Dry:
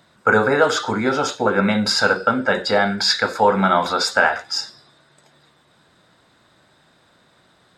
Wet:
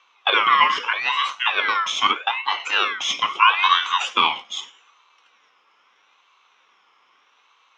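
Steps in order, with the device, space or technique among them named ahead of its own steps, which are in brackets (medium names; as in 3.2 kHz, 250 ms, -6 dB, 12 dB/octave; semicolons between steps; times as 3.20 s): voice changer toy (ring modulator with a swept carrier 2 kHz, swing 25%, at 0.79 Hz; cabinet simulation 520–5000 Hz, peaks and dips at 630 Hz -8 dB, 1.1 kHz +9 dB, 1.8 kHz -9 dB, 4.5 kHz -9 dB); 0.48–0.93 s: graphic EQ with 31 bands 800 Hz -7 dB, 1.6 kHz +11 dB, 8 kHz -7 dB; 2.11–2.60 s: low-pass 2.6 kHz 6 dB/octave; trim +1.5 dB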